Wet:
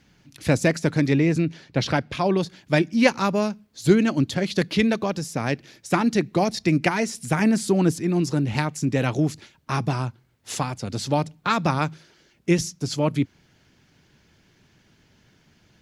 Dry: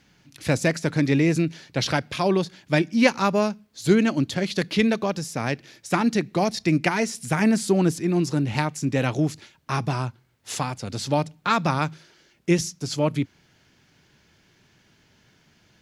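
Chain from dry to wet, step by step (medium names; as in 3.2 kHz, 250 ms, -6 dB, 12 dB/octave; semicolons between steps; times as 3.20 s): 1.13–2.37 s: treble shelf 6.2 kHz -10 dB; harmonic-percussive split percussive +4 dB; bass shelf 360 Hz +5 dB; trim -3.5 dB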